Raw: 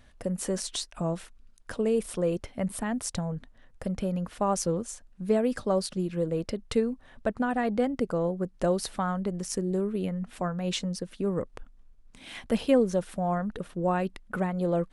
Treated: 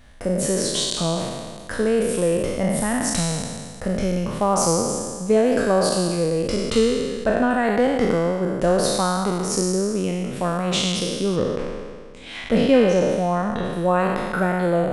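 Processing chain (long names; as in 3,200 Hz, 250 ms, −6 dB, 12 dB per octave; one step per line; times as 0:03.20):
peak hold with a decay on every bin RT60 1.79 s
0:11.36–0:13.73: low-pass filter 6,500 Hz 12 dB per octave
level +5 dB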